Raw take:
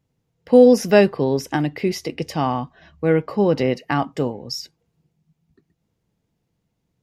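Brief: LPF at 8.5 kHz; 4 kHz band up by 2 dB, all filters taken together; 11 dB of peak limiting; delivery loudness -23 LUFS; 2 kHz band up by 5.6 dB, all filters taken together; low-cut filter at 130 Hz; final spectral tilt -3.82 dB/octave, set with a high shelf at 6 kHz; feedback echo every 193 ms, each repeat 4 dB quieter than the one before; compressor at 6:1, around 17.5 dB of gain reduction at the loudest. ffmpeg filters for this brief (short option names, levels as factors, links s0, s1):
-af "highpass=130,lowpass=8500,equalizer=f=2000:t=o:g=7,equalizer=f=4000:t=o:g=4,highshelf=f=6000:g=-6.5,acompressor=threshold=0.0501:ratio=6,alimiter=limit=0.0944:level=0:latency=1,aecho=1:1:193|386|579|772|965|1158|1351|1544|1737:0.631|0.398|0.25|0.158|0.0994|0.0626|0.0394|0.0249|0.0157,volume=2.51"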